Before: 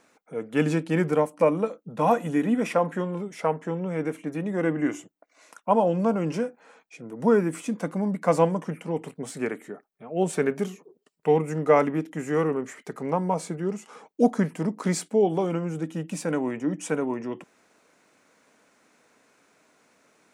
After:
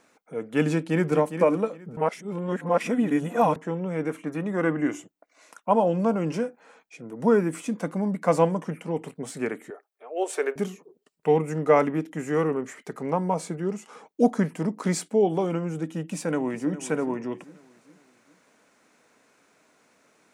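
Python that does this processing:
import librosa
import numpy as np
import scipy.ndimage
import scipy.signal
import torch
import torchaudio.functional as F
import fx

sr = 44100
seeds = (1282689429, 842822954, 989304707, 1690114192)

y = fx.echo_throw(x, sr, start_s=0.7, length_s=0.45, ms=410, feedback_pct=20, wet_db=-9.0)
y = fx.peak_eq(y, sr, hz=1200.0, db=7.5, octaves=0.71, at=(4.09, 4.77))
y = fx.cheby2_highpass(y, sr, hz=190.0, order=4, stop_db=40, at=(9.7, 10.56))
y = fx.echo_throw(y, sr, start_s=15.98, length_s=0.79, ms=410, feedback_pct=45, wet_db=-15.0)
y = fx.edit(y, sr, fx.reverse_span(start_s=1.97, length_s=1.59), tone=tone)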